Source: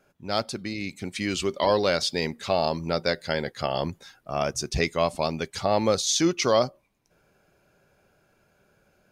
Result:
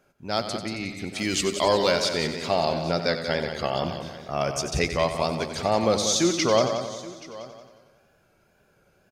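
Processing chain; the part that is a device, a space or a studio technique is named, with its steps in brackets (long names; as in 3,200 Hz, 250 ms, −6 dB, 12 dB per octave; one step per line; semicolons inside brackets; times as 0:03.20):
0:01.18–0:01.92: high-shelf EQ 5,300 Hz +10.5 dB
multi-head tape echo (echo machine with several playback heads 91 ms, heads first and second, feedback 47%, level −10.5 dB; tape wow and flutter)
single-tap delay 828 ms −19 dB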